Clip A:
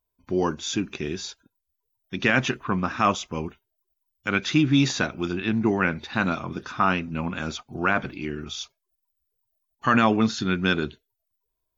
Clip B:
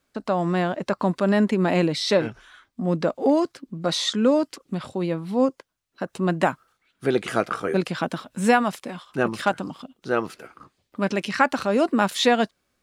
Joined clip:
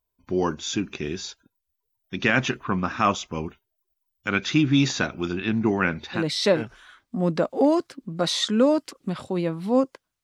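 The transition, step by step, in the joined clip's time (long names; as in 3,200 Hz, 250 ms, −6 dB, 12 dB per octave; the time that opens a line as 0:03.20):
clip A
0:06.19: continue with clip B from 0:01.84, crossfade 0.12 s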